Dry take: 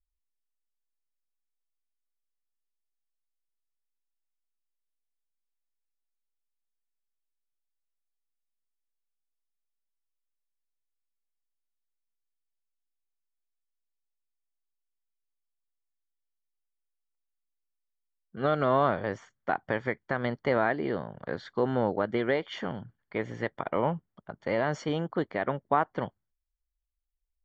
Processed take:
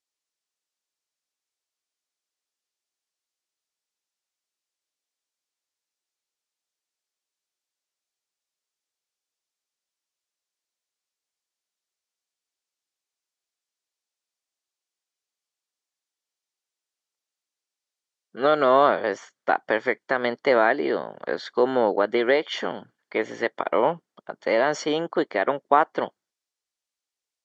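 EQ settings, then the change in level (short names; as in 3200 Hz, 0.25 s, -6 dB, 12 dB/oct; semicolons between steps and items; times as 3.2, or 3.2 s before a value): Chebyshev band-pass 360–6000 Hz, order 2; high shelf 5600 Hz +10.5 dB; +7.5 dB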